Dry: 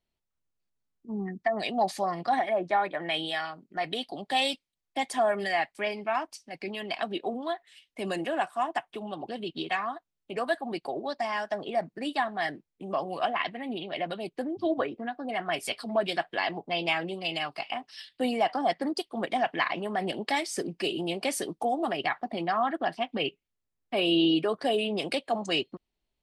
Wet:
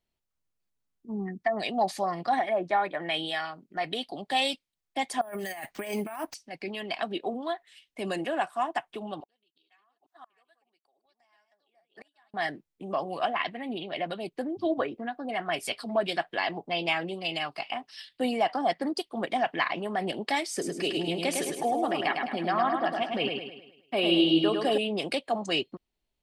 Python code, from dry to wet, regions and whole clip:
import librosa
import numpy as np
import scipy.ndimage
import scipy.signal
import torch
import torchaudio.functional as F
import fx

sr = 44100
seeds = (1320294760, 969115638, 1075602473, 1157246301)

y = fx.chain(x, sr, fx.low_shelf(hz=370.0, db=3.0),
    fx.over_compress(threshold_db=-36.0, ratio=-1.0),
    fx.resample_bad(factor=4, down='none', up='hold'), at=(5.21, 6.34))
y = fx.chain(y, sr, fx.reverse_delay(ms=433, wet_db=-6.5),
    fx.highpass(hz=1500.0, slope=6),
    fx.gate_flip(shuts_db=-36.0, range_db=-33), at=(9.2, 12.34))
y = fx.chain(y, sr, fx.highpass(hz=57.0, slope=12),
    fx.echo_feedback(ms=105, feedback_pct=46, wet_db=-4.5), at=(20.51, 24.78))